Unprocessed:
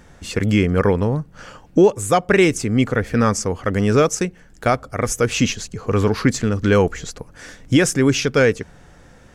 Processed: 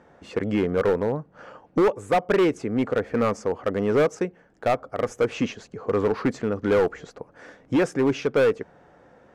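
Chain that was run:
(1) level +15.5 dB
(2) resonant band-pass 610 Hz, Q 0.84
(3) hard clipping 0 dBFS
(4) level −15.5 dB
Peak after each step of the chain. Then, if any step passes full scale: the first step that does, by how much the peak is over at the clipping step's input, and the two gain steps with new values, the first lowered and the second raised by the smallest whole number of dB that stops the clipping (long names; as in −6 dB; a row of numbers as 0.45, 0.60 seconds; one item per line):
+12.5, +10.0, 0.0, −15.5 dBFS
step 1, 10.0 dB
step 1 +5.5 dB, step 4 −5.5 dB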